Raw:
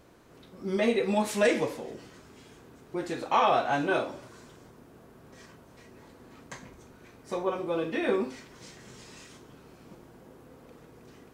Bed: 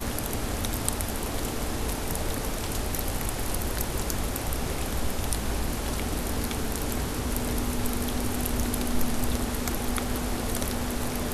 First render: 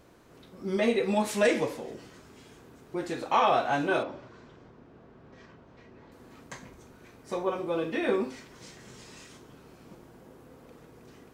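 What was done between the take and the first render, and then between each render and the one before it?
0:04.03–0:06.12: high-frequency loss of the air 180 metres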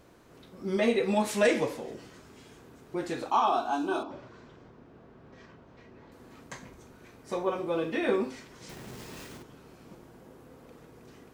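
0:03.30–0:04.11: phaser with its sweep stopped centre 530 Hz, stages 6
0:08.69–0:09.43: each half-wave held at its own peak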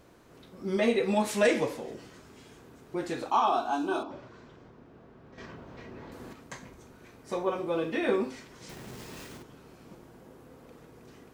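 0:05.38–0:06.33: clip gain +7.5 dB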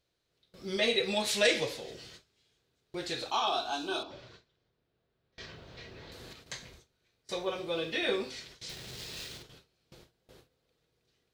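noise gate with hold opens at −40 dBFS
octave-band graphic EQ 250/1,000/4,000 Hz −11/−8/+12 dB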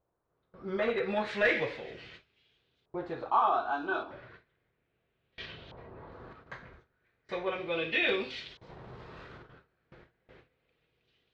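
hard clipping −23 dBFS, distortion −15 dB
auto-filter low-pass saw up 0.35 Hz 930–3,400 Hz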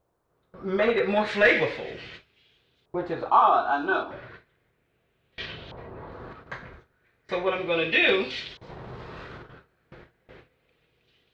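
level +7.5 dB

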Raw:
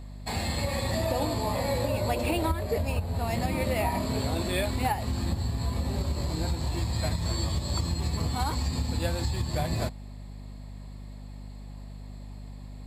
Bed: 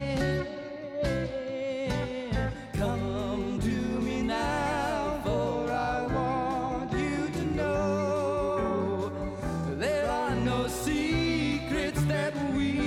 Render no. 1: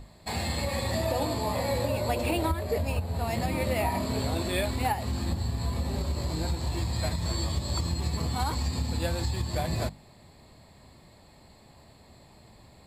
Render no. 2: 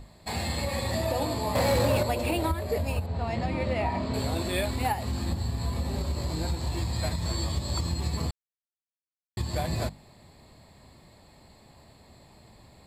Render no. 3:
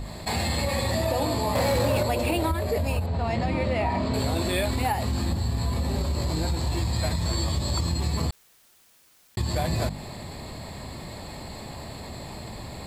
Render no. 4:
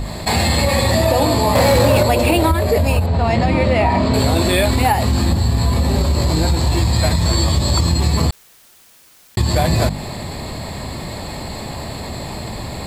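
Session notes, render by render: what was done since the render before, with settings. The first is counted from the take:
mains-hum notches 50/100/150/200/250/300 Hz
0:01.55–0:02.03: leveller curve on the samples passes 2; 0:03.06–0:04.14: high-frequency loss of the air 130 metres; 0:08.31–0:09.37: silence
envelope flattener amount 50%
level +10.5 dB; brickwall limiter −3 dBFS, peak gain reduction 1 dB

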